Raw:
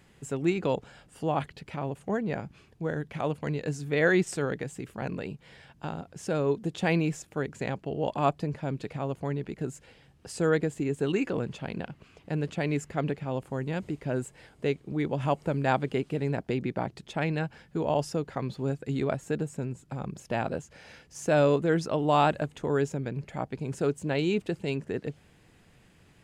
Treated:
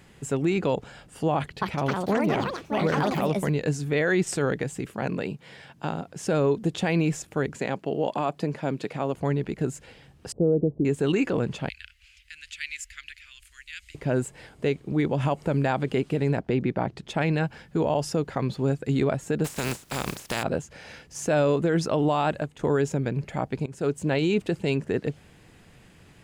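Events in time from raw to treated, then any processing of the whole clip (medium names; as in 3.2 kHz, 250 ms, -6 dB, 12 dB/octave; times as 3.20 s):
1.35–3.86 s: ever faster or slower copies 266 ms, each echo +5 st, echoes 3
4.85–6.25 s: high-pass 120 Hz
7.56–9.15 s: high-pass 180 Hz
10.32–10.85 s: inverse Chebyshev low-pass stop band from 2 kHz, stop band 60 dB
11.69–13.95 s: inverse Chebyshev band-stop 130–880 Hz, stop band 50 dB
16.39–17.07 s: low-pass 2.4 kHz -> 4 kHz 6 dB/octave
19.44–20.42 s: spectral contrast reduction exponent 0.41
22.12–22.59 s: fade out, to -10 dB
23.66–24.06 s: fade in, from -18 dB
whole clip: peak limiter -20.5 dBFS; trim +6 dB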